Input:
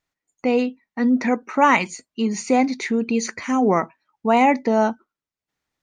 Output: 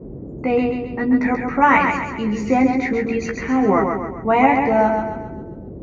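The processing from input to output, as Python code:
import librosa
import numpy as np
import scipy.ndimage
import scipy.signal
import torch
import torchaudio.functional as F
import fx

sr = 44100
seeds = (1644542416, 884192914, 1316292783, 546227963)

y = scipy.signal.sosfilt(scipy.signal.butter(4, 6300.0, 'lowpass', fs=sr, output='sos'), x)
y = fx.high_shelf_res(y, sr, hz=2700.0, db=-8.0, q=1.5)
y = fx.doubler(y, sr, ms=15.0, db=-3.0)
y = fx.echo_feedback(y, sr, ms=134, feedback_pct=47, wet_db=-5)
y = fx.dmg_noise_band(y, sr, seeds[0], low_hz=35.0, high_hz=400.0, level_db=-32.0)
y = y * 10.0 ** (-1.0 / 20.0)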